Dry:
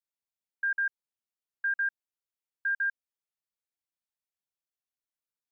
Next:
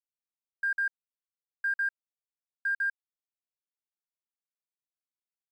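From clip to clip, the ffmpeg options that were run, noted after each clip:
-af "aeval=exprs='sgn(val(0))*max(abs(val(0))-0.00168,0)':c=same"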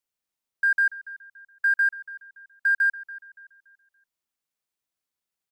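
-filter_complex "[0:a]asplit=2[s0][s1];[s1]adelay=285,lowpass=f=2300:p=1,volume=0.158,asplit=2[s2][s3];[s3]adelay=285,lowpass=f=2300:p=1,volume=0.43,asplit=2[s4][s5];[s5]adelay=285,lowpass=f=2300:p=1,volume=0.43,asplit=2[s6][s7];[s7]adelay=285,lowpass=f=2300:p=1,volume=0.43[s8];[s0][s2][s4][s6][s8]amix=inputs=5:normalize=0,volume=2.51"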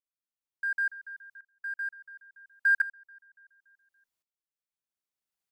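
-af "aeval=exprs='val(0)*pow(10,-18*if(lt(mod(-0.71*n/s,1),2*abs(-0.71)/1000),1-mod(-0.71*n/s,1)/(2*abs(-0.71)/1000),(mod(-0.71*n/s,1)-2*abs(-0.71)/1000)/(1-2*abs(-0.71)/1000))/20)':c=same"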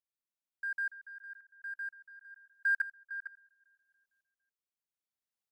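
-filter_complex "[0:a]asplit=2[s0][s1];[s1]adelay=454.8,volume=0.316,highshelf=f=4000:g=-10.2[s2];[s0][s2]amix=inputs=2:normalize=0,volume=0.501"

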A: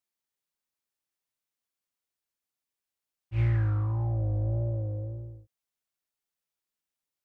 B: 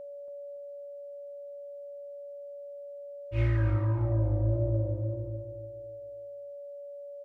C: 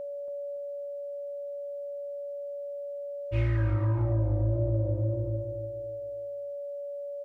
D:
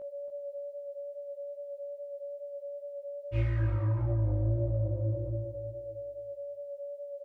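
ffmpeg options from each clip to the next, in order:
-filter_complex "[0:a]aecho=1:1:3.2:0.82,aeval=exprs='val(0)+0.01*sin(2*PI*570*n/s)':c=same,asplit=2[s0][s1];[s1]adelay=282,lowpass=f=2100:p=1,volume=0.376,asplit=2[s2][s3];[s3]adelay=282,lowpass=f=2100:p=1,volume=0.38,asplit=2[s4][s5];[s5]adelay=282,lowpass=f=2100:p=1,volume=0.38,asplit=2[s6][s7];[s7]adelay=282,lowpass=f=2100:p=1,volume=0.38[s8];[s0][s2][s4][s6][s8]amix=inputs=5:normalize=0"
-af "acompressor=threshold=0.0282:ratio=3,volume=2"
-filter_complex "[0:a]flanger=delay=17:depth=2.6:speed=2.4,asplit=2[s0][s1];[s1]adelay=390.7,volume=0.112,highshelf=f=4000:g=-8.79[s2];[s0][s2]amix=inputs=2:normalize=0,volume=0.841"

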